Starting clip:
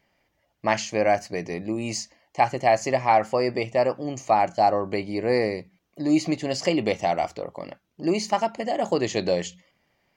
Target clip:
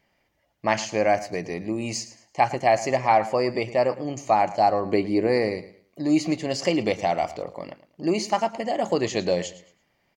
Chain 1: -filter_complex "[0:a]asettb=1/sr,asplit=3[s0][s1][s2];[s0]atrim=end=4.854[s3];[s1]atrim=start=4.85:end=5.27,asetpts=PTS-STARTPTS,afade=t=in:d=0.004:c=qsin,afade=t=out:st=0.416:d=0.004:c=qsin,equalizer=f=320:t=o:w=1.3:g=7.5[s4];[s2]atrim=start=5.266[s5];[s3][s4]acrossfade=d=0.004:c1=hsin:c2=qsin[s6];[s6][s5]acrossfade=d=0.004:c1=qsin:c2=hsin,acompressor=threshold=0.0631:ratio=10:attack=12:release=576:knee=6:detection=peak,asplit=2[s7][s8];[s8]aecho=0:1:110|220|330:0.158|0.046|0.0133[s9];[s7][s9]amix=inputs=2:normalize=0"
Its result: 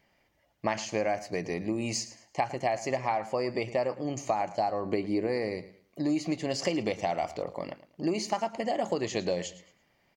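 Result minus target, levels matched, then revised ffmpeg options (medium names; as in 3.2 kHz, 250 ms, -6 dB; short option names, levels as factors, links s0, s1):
compression: peak gain reduction +12 dB
-filter_complex "[0:a]asettb=1/sr,asplit=3[s0][s1][s2];[s0]atrim=end=4.854[s3];[s1]atrim=start=4.85:end=5.27,asetpts=PTS-STARTPTS,afade=t=in:d=0.004:c=qsin,afade=t=out:st=0.416:d=0.004:c=qsin,equalizer=f=320:t=o:w=1.3:g=7.5[s4];[s2]atrim=start=5.266[s5];[s3][s4]acrossfade=d=0.004:c1=hsin:c2=qsin[s6];[s6][s5]acrossfade=d=0.004:c1=qsin:c2=hsin,asplit=2[s7][s8];[s8]aecho=0:1:110|220|330:0.158|0.046|0.0133[s9];[s7][s9]amix=inputs=2:normalize=0"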